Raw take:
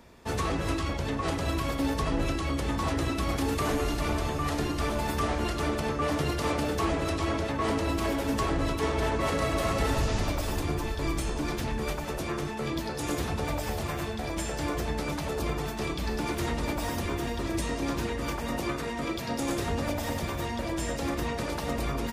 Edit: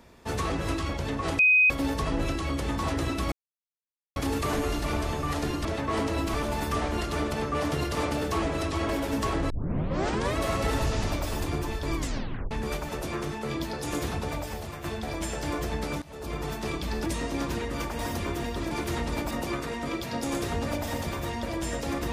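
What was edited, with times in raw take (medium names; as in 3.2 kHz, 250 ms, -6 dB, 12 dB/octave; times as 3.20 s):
1.39–1.70 s: bleep 2.51 kHz -16 dBFS
3.32 s: insert silence 0.84 s
7.36–8.05 s: move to 4.81 s
8.66 s: tape start 0.87 s
11.13 s: tape stop 0.54 s
13.29–14.00 s: fade out, to -8 dB
15.18–15.65 s: fade in, from -23 dB
16.22–16.82 s: swap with 17.54–18.47 s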